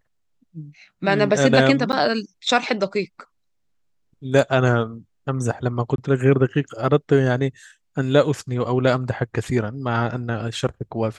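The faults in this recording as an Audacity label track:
1.920000	1.930000	drop-out 9.6 ms
5.960000	5.980000	drop-out 22 ms

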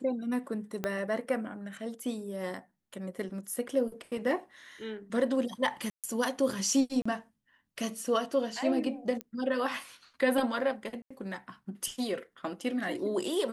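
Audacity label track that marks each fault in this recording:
0.840000	0.840000	click −17 dBFS
5.900000	6.040000	drop-out 137 ms
7.020000	7.050000	drop-out 35 ms
9.210000	9.210000	click −21 dBFS
11.020000	11.110000	drop-out 85 ms

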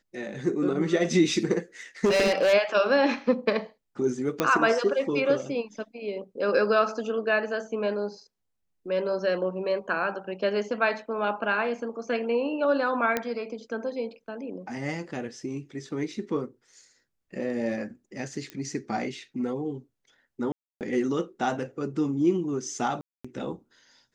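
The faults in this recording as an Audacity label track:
2.040000	2.540000	clipping −18.5 dBFS
4.400000	4.400000	click −9 dBFS
13.170000	13.170000	click −11 dBFS
18.500000	18.500000	click −22 dBFS
20.520000	20.810000	drop-out 288 ms
23.010000	23.250000	drop-out 235 ms

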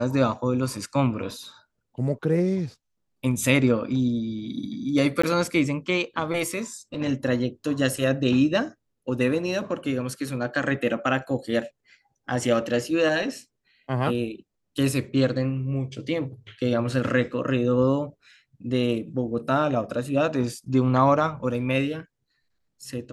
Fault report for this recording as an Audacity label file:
5.220000	5.240000	drop-out 15 ms

